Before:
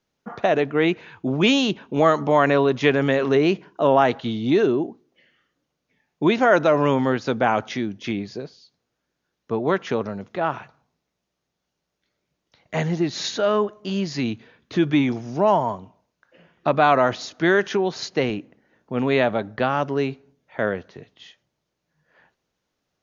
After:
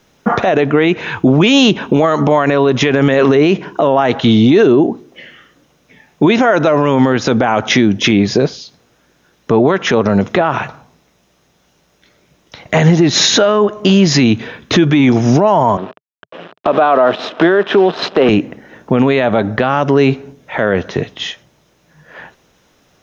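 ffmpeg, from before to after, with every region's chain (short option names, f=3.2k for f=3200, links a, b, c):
-filter_complex "[0:a]asettb=1/sr,asplit=3[a][b][c];[a]atrim=end=15.774[d];[b]atrim=start=15.77:end=18.29,asetpts=PTS-STARTPTS,afade=t=in:d=0.004:c=qsin,afade=t=out:st=2.516:d=0.004:c=qsin,acrusher=bits=6:dc=4:mix=0:aa=0.000001,highpass=f=140:w=0.5412,highpass=f=140:w=1.3066,equalizer=f=140:t=q:w=4:g=-8,equalizer=f=420:t=q:w=4:g=5,equalizer=f=640:t=q:w=4:g=6,equalizer=f=1.2k:t=q:w=4:g=3,equalizer=f=2.1k:t=q:w=4:g=-7,lowpass=f=3.4k:w=0.5412,lowpass=f=3.4k:w=1.3066[e];[c]atrim=start=18.286[f];[d][e]acrossfade=d=0.004:c1=hsin:c2=qsin[g];[g][f]acrossfade=d=0.004:c1=qsin:c2=hsin,bandreject=f=4.5k:w=8.6,acompressor=threshold=-28dB:ratio=3,alimiter=level_in=24.5dB:limit=-1dB:release=50:level=0:latency=1,volume=-1dB"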